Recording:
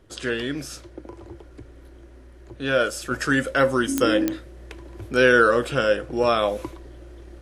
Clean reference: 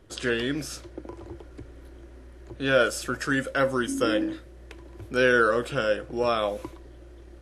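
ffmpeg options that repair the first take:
-af "adeclick=t=4,asetnsamples=n=441:p=0,asendcmd='3.11 volume volume -4.5dB',volume=0dB"

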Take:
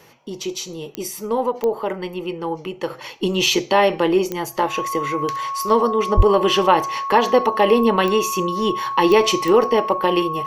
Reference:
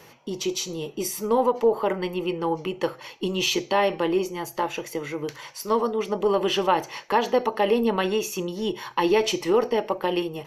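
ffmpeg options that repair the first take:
-filter_complex "[0:a]adeclick=t=4,bandreject=f=1.1k:w=30,asplit=3[a][b][c];[a]afade=t=out:st=6.16:d=0.02[d];[b]highpass=f=140:w=0.5412,highpass=f=140:w=1.3066,afade=t=in:st=6.16:d=0.02,afade=t=out:st=6.28:d=0.02[e];[c]afade=t=in:st=6.28:d=0.02[f];[d][e][f]amix=inputs=3:normalize=0,asetnsamples=n=441:p=0,asendcmd='2.9 volume volume -6dB',volume=0dB"

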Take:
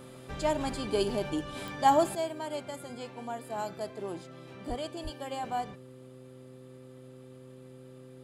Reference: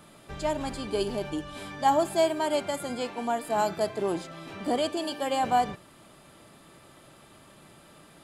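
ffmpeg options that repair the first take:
-filter_complex "[0:a]adeclick=t=4,bandreject=f=128.6:t=h:w=4,bandreject=f=257.2:t=h:w=4,bandreject=f=385.8:t=h:w=4,bandreject=f=514.4:t=h:w=4,asplit=3[a][b][c];[a]afade=t=out:st=4.68:d=0.02[d];[b]highpass=f=140:w=0.5412,highpass=f=140:w=1.3066,afade=t=in:st=4.68:d=0.02,afade=t=out:st=4.8:d=0.02[e];[c]afade=t=in:st=4.8:d=0.02[f];[d][e][f]amix=inputs=3:normalize=0,asplit=3[g][h][i];[g]afade=t=out:st=5.03:d=0.02[j];[h]highpass=f=140:w=0.5412,highpass=f=140:w=1.3066,afade=t=in:st=5.03:d=0.02,afade=t=out:st=5.15:d=0.02[k];[i]afade=t=in:st=5.15:d=0.02[l];[j][k][l]amix=inputs=3:normalize=0,asetnsamples=n=441:p=0,asendcmd='2.15 volume volume 9.5dB',volume=0dB"

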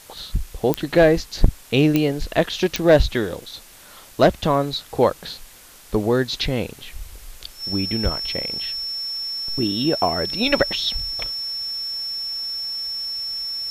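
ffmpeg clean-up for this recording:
-af "adeclick=t=4,bandreject=f=5.4k:w=30,afwtdn=0.0056"

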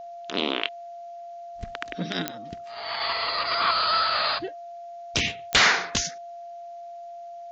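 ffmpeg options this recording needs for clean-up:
-af "adeclick=t=4,bandreject=f=690:w=30,agate=range=-21dB:threshold=-32dB"

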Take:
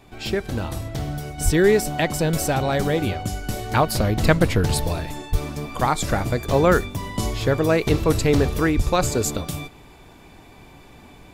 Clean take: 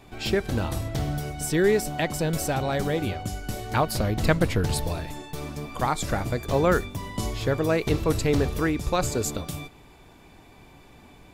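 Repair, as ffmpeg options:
-filter_complex "[0:a]asplit=3[a][b][c];[a]afade=t=out:st=1.44:d=0.02[d];[b]highpass=f=140:w=0.5412,highpass=f=140:w=1.3066,afade=t=in:st=1.44:d=0.02,afade=t=out:st=1.56:d=0.02[e];[c]afade=t=in:st=1.56:d=0.02[f];[d][e][f]amix=inputs=3:normalize=0,asplit=3[g][h][i];[g]afade=t=out:st=5.31:d=0.02[j];[h]highpass=f=140:w=0.5412,highpass=f=140:w=1.3066,afade=t=in:st=5.31:d=0.02,afade=t=out:st=5.43:d=0.02[k];[i]afade=t=in:st=5.43:d=0.02[l];[j][k][l]amix=inputs=3:normalize=0,asplit=3[m][n][o];[m]afade=t=out:st=8.76:d=0.02[p];[n]highpass=f=140:w=0.5412,highpass=f=140:w=1.3066,afade=t=in:st=8.76:d=0.02,afade=t=out:st=8.88:d=0.02[q];[o]afade=t=in:st=8.88:d=0.02[r];[p][q][r]amix=inputs=3:normalize=0,asetnsamples=n=441:p=0,asendcmd='1.38 volume volume -4.5dB',volume=0dB"

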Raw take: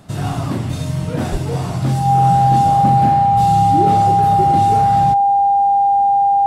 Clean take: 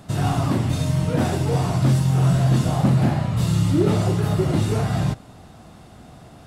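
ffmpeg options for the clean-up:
-filter_complex "[0:a]bandreject=f=800:w=30,asplit=3[a][b][c];[a]afade=t=out:st=1.31:d=0.02[d];[b]highpass=f=140:w=0.5412,highpass=f=140:w=1.3066,afade=t=in:st=1.31:d=0.02,afade=t=out:st=1.43:d=0.02[e];[c]afade=t=in:st=1.43:d=0.02[f];[d][e][f]amix=inputs=3:normalize=0"

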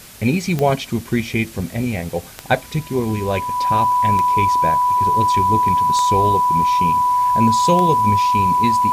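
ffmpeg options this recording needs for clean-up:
-af "adeclick=t=4,bandreject=f=990:w=30,afwtdn=0.01"

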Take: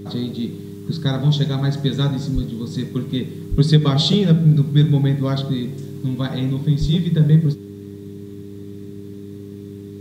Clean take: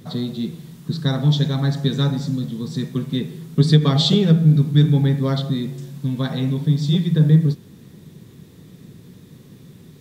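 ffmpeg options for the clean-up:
-filter_complex "[0:a]bandreject=f=100.4:t=h:w=4,bandreject=f=200.8:t=h:w=4,bandreject=f=301.2:t=h:w=4,bandreject=f=401.6:t=h:w=4,asplit=3[a][b][c];[a]afade=t=out:st=2.34:d=0.02[d];[b]highpass=f=140:w=0.5412,highpass=f=140:w=1.3066,afade=t=in:st=2.34:d=0.02,afade=t=out:st=2.46:d=0.02[e];[c]afade=t=in:st=2.46:d=0.02[f];[d][e][f]amix=inputs=3:normalize=0,asplit=3[g][h][i];[g]afade=t=out:st=3.5:d=0.02[j];[h]highpass=f=140:w=0.5412,highpass=f=140:w=1.3066,afade=t=in:st=3.5:d=0.02,afade=t=out:st=3.62:d=0.02[k];[i]afade=t=in:st=3.62:d=0.02[l];[j][k][l]amix=inputs=3:normalize=0,asplit=3[m][n][o];[m]afade=t=out:st=6.8:d=0.02[p];[n]highpass=f=140:w=0.5412,highpass=f=140:w=1.3066,afade=t=in:st=6.8:d=0.02,afade=t=out:st=6.92:d=0.02[q];[o]afade=t=in:st=6.92:d=0.02[r];[p][q][r]amix=inputs=3:normalize=0"

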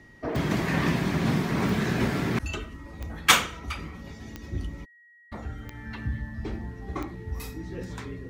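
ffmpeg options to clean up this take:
-af "adeclick=t=4,bandreject=f=1.9k:w=30"

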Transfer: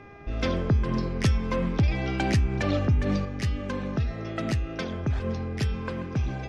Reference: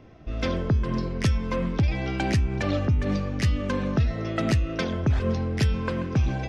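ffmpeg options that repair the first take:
-af "bandreject=f=403.8:t=h:w=4,bandreject=f=807.6:t=h:w=4,bandreject=f=1.2114k:t=h:w=4,bandreject=f=1.6152k:t=h:w=4,bandreject=f=2.019k:t=h:w=4,bandreject=f=2.4228k:t=h:w=4,asetnsamples=n=441:p=0,asendcmd='3.25 volume volume 4.5dB',volume=0dB"

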